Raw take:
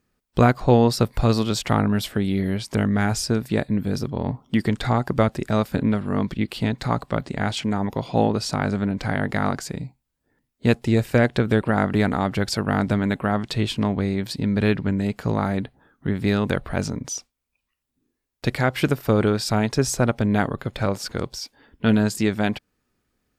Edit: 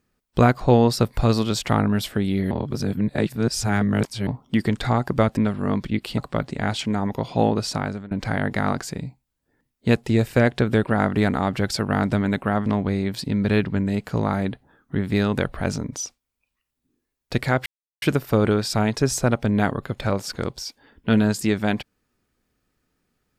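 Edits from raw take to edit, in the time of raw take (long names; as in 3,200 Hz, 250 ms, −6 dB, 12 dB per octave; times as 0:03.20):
0:02.51–0:04.27: reverse
0:05.37–0:05.84: remove
0:06.65–0:06.96: remove
0:08.50–0:08.89: fade out, to −23.5 dB
0:13.44–0:13.78: remove
0:18.78: splice in silence 0.36 s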